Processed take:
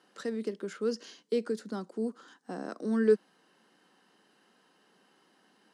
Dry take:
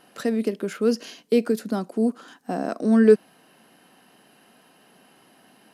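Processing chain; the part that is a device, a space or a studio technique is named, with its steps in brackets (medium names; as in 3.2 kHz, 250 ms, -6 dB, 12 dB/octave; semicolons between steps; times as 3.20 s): television speaker (cabinet simulation 180–8600 Hz, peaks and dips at 250 Hz -6 dB, 670 Hz -9 dB, 2.5 kHz -7 dB); trim -7.5 dB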